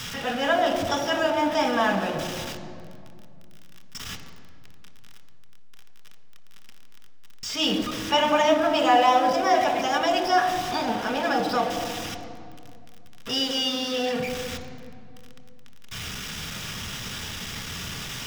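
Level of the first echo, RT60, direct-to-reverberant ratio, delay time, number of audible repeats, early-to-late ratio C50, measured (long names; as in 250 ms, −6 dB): no echo audible, 2.4 s, 4.0 dB, no echo audible, no echo audible, 8.0 dB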